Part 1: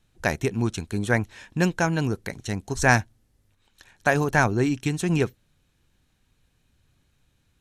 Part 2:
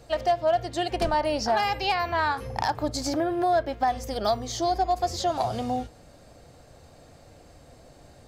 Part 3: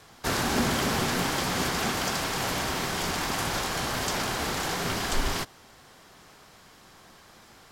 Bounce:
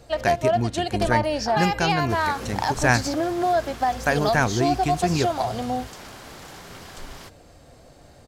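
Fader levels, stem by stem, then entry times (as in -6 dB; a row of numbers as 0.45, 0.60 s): -1.0, +1.5, -12.5 dB; 0.00, 0.00, 1.85 s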